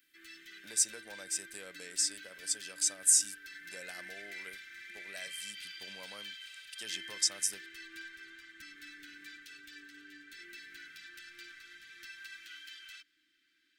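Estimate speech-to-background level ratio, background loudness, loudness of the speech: 16.0 dB, -47.0 LUFS, -31.0 LUFS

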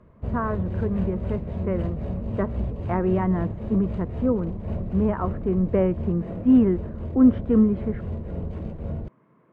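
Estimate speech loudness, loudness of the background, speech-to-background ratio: -24.5 LUFS, -32.0 LUFS, 7.5 dB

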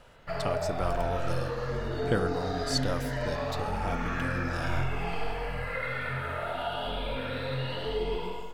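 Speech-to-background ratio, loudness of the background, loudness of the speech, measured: -2.5 dB, -33.0 LUFS, -35.5 LUFS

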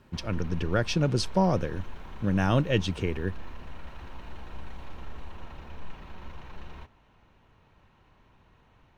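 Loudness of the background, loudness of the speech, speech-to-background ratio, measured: -46.5 LUFS, -28.0 LUFS, 18.5 dB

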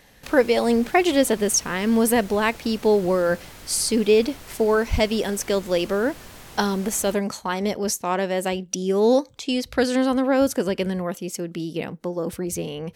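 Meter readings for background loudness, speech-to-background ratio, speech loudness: -42.5 LUFS, 20.0 dB, -22.5 LUFS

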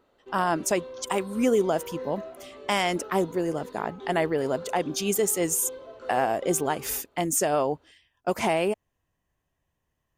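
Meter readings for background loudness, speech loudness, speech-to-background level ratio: -42.0 LUFS, -27.0 LUFS, 15.0 dB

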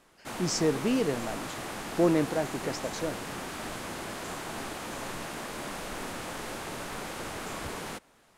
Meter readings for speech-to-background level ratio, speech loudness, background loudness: 7.5 dB, -30.0 LUFS, -37.5 LUFS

